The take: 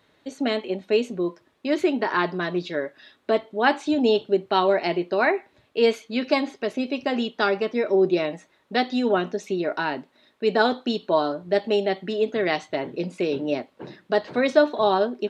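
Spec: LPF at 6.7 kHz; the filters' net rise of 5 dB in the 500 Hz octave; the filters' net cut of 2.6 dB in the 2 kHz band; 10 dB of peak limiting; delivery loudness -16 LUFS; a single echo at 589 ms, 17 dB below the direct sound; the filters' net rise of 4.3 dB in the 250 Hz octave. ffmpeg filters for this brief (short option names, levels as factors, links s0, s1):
-af "lowpass=6700,equalizer=f=250:t=o:g=3.5,equalizer=f=500:t=o:g=5.5,equalizer=f=2000:t=o:g=-4,alimiter=limit=0.282:level=0:latency=1,aecho=1:1:589:0.141,volume=2"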